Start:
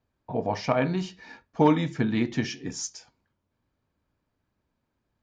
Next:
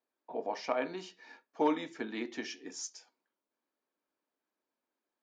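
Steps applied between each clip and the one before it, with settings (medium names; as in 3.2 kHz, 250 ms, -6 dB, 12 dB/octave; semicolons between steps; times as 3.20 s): high-pass 290 Hz 24 dB/octave; trim -7.5 dB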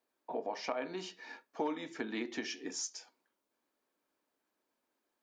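compression 3:1, threshold -41 dBFS, peak gain reduction 13 dB; trim +5 dB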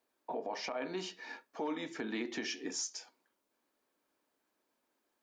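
peak limiter -30.5 dBFS, peak gain reduction 9.5 dB; trim +2.5 dB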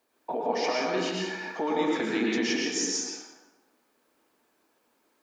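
plate-style reverb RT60 1.2 s, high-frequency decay 0.6×, pre-delay 95 ms, DRR -2.5 dB; trim +7 dB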